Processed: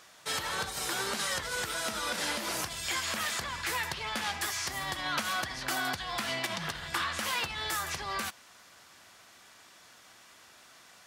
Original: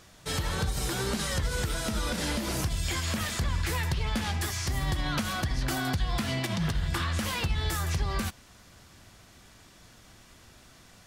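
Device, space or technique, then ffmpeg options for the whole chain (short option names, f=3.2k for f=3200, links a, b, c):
filter by subtraction: -filter_complex "[0:a]asplit=2[a][b];[b]lowpass=1.1k,volume=-1[c];[a][c]amix=inputs=2:normalize=0"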